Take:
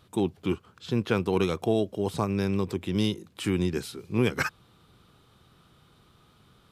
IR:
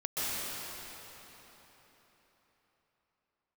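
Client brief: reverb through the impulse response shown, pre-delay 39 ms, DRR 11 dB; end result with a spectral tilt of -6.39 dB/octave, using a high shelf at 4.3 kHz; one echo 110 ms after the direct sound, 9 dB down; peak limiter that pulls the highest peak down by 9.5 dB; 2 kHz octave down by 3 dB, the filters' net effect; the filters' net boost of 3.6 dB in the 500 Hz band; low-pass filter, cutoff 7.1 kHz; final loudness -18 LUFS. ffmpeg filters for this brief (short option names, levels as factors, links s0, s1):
-filter_complex "[0:a]lowpass=7100,equalizer=f=500:t=o:g=5,equalizer=f=2000:t=o:g=-3,highshelf=f=4300:g=-6.5,alimiter=limit=0.106:level=0:latency=1,aecho=1:1:110:0.355,asplit=2[s0][s1];[1:a]atrim=start_sample=2205,adelay=39[s2];[s1][s2]afir=irnorm=-1:irlink=0,volume=0.106[s3];[s0][s3]amix=inputs=2:normalize=0,volume=4.22"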